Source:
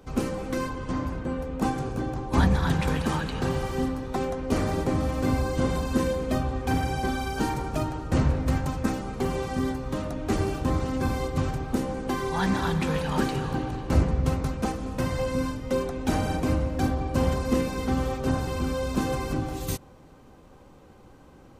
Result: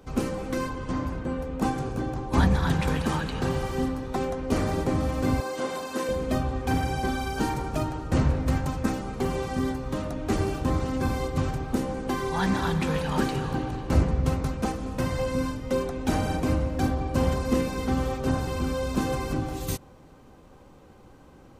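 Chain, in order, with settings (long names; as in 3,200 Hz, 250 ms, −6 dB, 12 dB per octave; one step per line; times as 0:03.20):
0:05.40–0:06.09: high-pass filter 400 Hz 12 dB per octave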